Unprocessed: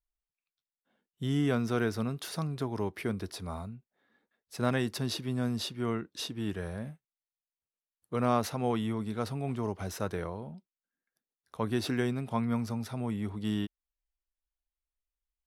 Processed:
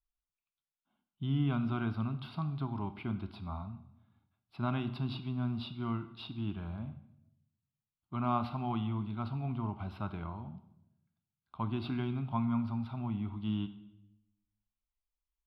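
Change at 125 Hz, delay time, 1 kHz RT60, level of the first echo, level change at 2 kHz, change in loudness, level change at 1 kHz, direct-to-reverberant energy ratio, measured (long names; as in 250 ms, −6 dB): −0.5 dB, no echo audible, 0.80 s, no echo audible, −8.5 dB, −3.5 dB, −2.5 dB, 11.0 dB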